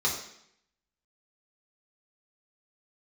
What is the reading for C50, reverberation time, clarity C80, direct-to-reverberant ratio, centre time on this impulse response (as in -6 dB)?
5.5 dB, 0.70 s, 8.5 dB, -5.0 dB, 31 ms